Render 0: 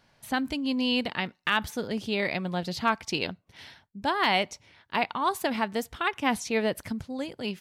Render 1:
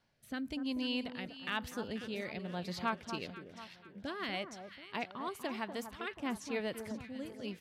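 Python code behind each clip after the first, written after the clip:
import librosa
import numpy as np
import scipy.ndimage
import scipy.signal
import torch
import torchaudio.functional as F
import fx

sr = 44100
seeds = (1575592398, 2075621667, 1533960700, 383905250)

y = fx.rotary(x, sr, hz=1.0)
y = fx.echo_alternate(y, sr, ms=243, hz=1400.0, feedback_pct=65, wet_db=-8.5)
y = y * 10.0 ** (-8.5 / 20.0)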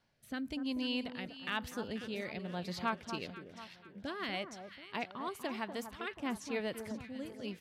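y = x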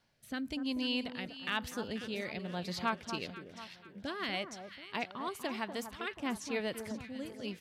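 y = fx.peak_eq(x, sr, hz=6200.0, db=3.0, octaves=2.6)
y = y * 10.0 ** (1.0 / 20.0)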